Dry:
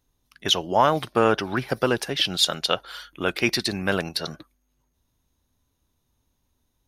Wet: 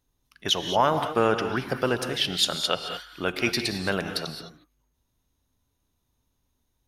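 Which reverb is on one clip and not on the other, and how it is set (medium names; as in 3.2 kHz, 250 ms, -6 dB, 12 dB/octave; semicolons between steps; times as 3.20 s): gated-style reverb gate 240 ms rising, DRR 7 dB; trim -3 dB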